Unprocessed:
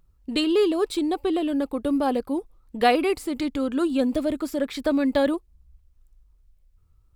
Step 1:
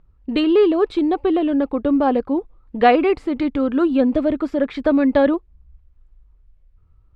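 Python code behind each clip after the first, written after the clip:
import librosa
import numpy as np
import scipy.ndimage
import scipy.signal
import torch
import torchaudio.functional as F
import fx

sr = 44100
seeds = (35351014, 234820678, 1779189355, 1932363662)

y = scipy.signal.sosfilt(scipy.signal.butter(2, 2300.0, 'lowpass', fs=sr, output='sos'), x)
y = y * librosa.db_to_amplitude(6.0)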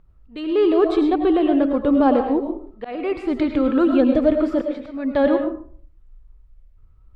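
y = fx.auto_swell(x, sr, attack_ms=489.0)
y = fx.rev_freeverb(y, sr, rt60_s=0.52, hf_ratio=0.5, predelay_ms=65, drr_db=4.5)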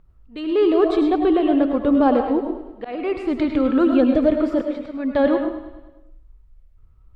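y = fx.echo_feedback(x, sr, ms=103, feedback_pct=56, wet_db=-13.0)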